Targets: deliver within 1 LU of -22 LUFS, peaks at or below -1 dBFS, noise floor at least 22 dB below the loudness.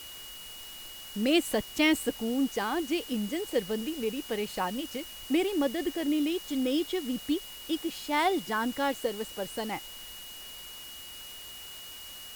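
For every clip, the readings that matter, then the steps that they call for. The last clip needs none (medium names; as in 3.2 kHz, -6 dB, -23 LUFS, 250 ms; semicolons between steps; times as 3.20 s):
steady tone 2.9 kHz; tone level -45 dBFS; noise floor -45 dBFS; noise floor target -53 dBFS; loudness -31.0 LUFS; peak level -11.5 dBFS; loudness target -22.0 LUFS
-> band-stop 2.9 kHz, Q 30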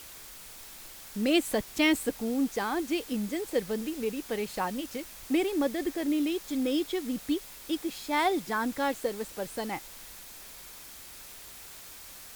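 steady tone not found; noise floor -47 dBFS; noise floor target -53 dBFS
-> noise reduction 6 dB, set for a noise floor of -47 dBFS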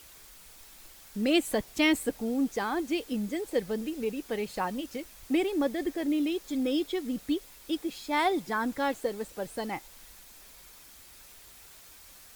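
noise floor -52 dBFS; noise floor target -53 dBFS
-> noise reduction 6 dB, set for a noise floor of -52 dBFS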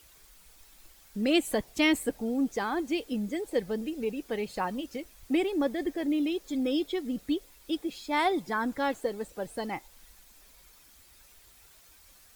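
noise floor -57 dBFS; loudness -30.5 LUFS; peak level -12.0 dBFS; loudness target -22.0 LUFS
-> trim +8.5 dB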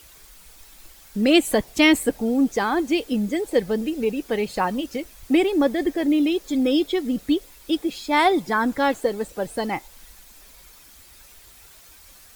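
loudness -22.0 LUFS; peak level -3.5 dBFS; noise floor -49 dBFS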